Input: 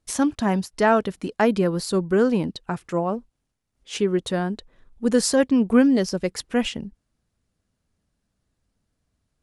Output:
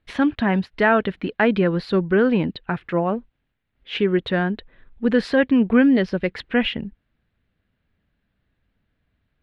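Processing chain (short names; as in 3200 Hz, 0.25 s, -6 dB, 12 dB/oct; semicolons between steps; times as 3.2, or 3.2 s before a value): band shelf 2500 Hz +9 dB; in parallel at -2 dB: limiter -14 dBFS, peak gain reduction 11.5 dB; on the sum: air absorption 380 m; gain -1.5 dB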